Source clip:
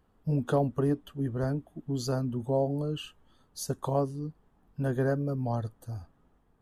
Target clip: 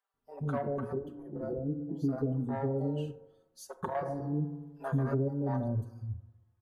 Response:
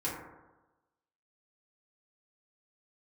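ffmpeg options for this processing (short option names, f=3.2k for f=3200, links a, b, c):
-filter_complex "[0:a]afwtdn=0.0158,asoftclip=type=tanh:threshold=-17dB,asettb=1/sr,asplit=3[a][b][c];[a]atrim=end=1.224[d];[b]atrim=start=1.22:end=2.18,asetpts=PTS-STARTPTS,afade=t=in:d=0.004:c=qsin,afade=t=out:st=0.956:d=0.004:c=qsin,equalizer=f=250:t=o:w=1:g=6,equalizer=f=500:t=o:w=1:g=6,equalizer=f=1k:t=o:w=1:g=-10,equalizer=f=2k:t=o:w=1:g=-5,equalizer=f=4k:t=o:w=1:g=-5,equalizer=f=8k:t=o:w=1:g=-12[e];[c]atrim=start=2.176[f];[d][e]acrossfade=d=0.004:c1=hsin:c2=qsin[g];[g][f]acrossfade=d=0.004:c1=qsin:c2=hsin,asplit=2[h][i];[1:a]atrim=start_sample=2205,adelay=36[j];[i][j]afir=irnorm=-1:irlink=0,volume=-18.5dB[k];[h][k]amix=inputs=2:normalize=0,asettb=1/sr,asplit=3[l][m][n];[l]atrim=end=4.054[o];[m]atrim=start=4.05:end=5.14,asetpts=PTS-STARTPTS,afade=t=in:d=0.004:c=qsin,afade=t=out:st=1.086:d=0.004:c=qsin,acontrast=55[p];[n]atrim=start=5.136[q];[o][p]acrossfade=d=0.004:c1=hsin:c2=qsin[r];[r][q]acrossfade=d=0.004:c1=qsin:c2=hsin,lowshelf=f=470:g=-5.5,bandreject=f=60:t=h:w=6,bandreject=f=120:t=h:w=6,acrossover=split=580[s][t];[s]adelay=140[u];[u][t]amix=inputs=2:normalize=0,acompressor=threshold=-33dB:ratio=6,asplit=2[v][w];[w]adelay=4.6,afreqshift=-0.38[x];[v][x]amix=inputs=2:normalize=1,volume=7.5dB"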